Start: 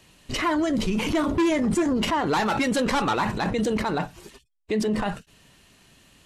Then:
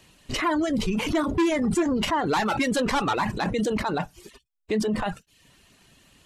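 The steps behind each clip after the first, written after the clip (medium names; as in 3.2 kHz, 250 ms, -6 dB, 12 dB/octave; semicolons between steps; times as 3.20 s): reverb removal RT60 0.54 s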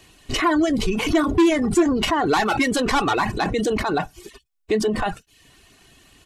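comb 2.7 ms, depth 38%; trim +4 dB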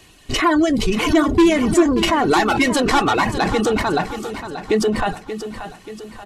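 feedback delay 582 ms, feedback 50%, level -11 dB; trim +3 dB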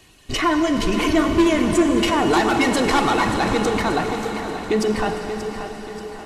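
reverberation RT60 5.8 s, pre-delay 28 ms, DRR 4 dB; trim -3 dB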